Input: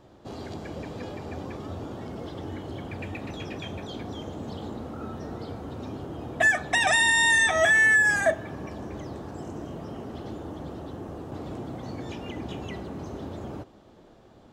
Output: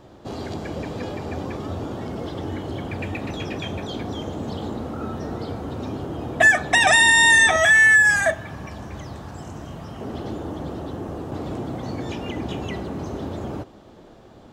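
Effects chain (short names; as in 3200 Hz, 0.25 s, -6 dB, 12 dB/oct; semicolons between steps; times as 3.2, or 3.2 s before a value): 7.56–10.01 bell 370 Hz -10 dB 1.8 oct; gain +6.5 dB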